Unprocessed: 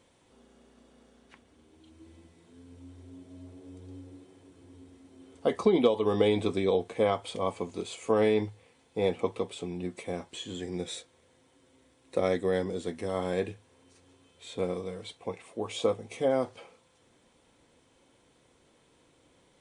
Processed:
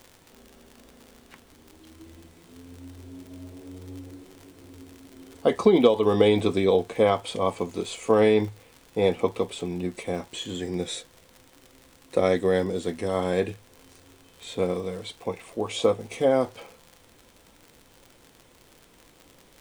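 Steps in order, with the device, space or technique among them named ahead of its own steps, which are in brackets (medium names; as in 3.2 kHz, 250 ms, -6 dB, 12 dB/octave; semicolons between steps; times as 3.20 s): vinyl LP (crackle 77 per s -42 dBFS; pink noise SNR 33 dB); trim +5.5 dB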